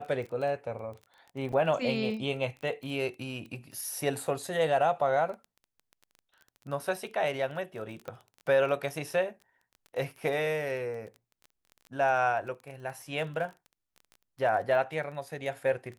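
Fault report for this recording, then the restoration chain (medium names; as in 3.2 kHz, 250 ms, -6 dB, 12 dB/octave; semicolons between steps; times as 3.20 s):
crackle 20 per s -39 dBFS
1.52–1.53 s: dropout 6 ms
8.08 s: pop -26 dBFS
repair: de-click; interpolate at 1.52 s, 6 ms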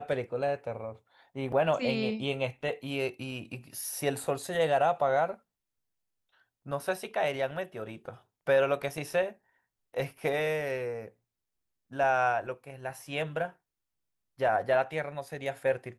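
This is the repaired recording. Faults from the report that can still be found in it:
nothing left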